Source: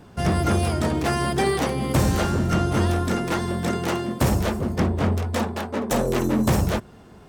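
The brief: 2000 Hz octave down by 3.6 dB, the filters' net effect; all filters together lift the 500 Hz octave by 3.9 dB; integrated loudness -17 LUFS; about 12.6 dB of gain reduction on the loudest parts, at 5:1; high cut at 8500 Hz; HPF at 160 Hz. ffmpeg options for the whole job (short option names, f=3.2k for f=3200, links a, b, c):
-af "highpass=160,lowpass=8.5k,equalizer=f=500:t=o:g=5.5,equalizer=f=2k:t=o:g=-5,acompressor=threshold=-31dB:ratio=5,volume=17dB"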